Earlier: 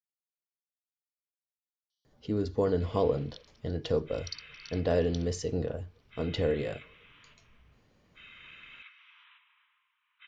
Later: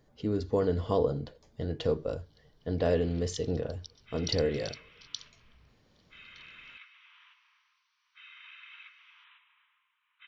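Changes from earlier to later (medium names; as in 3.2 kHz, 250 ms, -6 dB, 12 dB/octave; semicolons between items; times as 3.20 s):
speech: entry -2.05 s; second sound +6.5 dB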